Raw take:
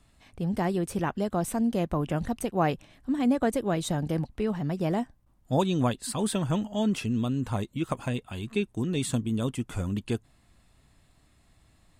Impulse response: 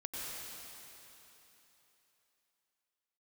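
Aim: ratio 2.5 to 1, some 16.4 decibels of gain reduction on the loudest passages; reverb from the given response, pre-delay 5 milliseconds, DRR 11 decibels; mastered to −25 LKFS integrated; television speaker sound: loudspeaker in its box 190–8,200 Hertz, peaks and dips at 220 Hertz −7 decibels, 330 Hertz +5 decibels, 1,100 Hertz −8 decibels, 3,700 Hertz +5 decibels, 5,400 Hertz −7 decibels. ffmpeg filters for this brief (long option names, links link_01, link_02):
-filter_complex "[0:a]acompressor=threshold=-46dB:ratio=2.5,asplit=2[link_01][link_02];[1:a]atrim=start_sample=2205,adelay=5[link_03];[link_02][link_03]afir=irnorm=-1:irlink=0,volume=-12.5dB[link_04];[link_01][link_04]amix=inputs=2:normalize=0,highpass=frequency=190:width=0.5412,highpass=frequency=190:width=1.3066,equalizer=frequency=220:width_type=q:width=4:gain=-7,equalizer=frequency=330:width_type=q:width=4:gain=5,equalizer=frequency=1100:width_type=q:width=4:gain=-8,equalizer=frequency=3700:width_type=q:width=4:gain=5,equalizer=frequency=5400:width_type=q:width=4:gain=-7,lowpass=frequency=8200:width=0.5412,lowpass=frequency=8200:width=1.3066,volume=20dB"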